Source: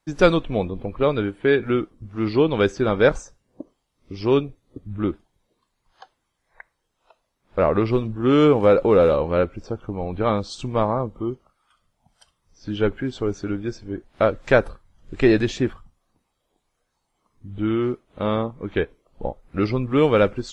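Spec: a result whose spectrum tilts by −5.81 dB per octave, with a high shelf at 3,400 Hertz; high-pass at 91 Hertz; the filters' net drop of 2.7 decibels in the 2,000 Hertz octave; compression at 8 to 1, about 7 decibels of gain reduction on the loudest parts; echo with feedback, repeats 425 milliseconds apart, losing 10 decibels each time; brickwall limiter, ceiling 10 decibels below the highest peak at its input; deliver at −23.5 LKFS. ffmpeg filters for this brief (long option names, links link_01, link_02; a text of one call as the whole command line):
ffmpeg -i in.wav -af "highpass=91,equalizer=frequency=2000:width_type=o:gain=-6,highshelf=frequency=3400:gain=7.5,acompressor=threshold=-18dB:ratio=8,alimiter=limit=-18.5dB:level=0:latency=1,aecho=1:1:425|850|1275|1700:0.316|0.101|0.0324|0.0104,volume=6.5dB" out.wav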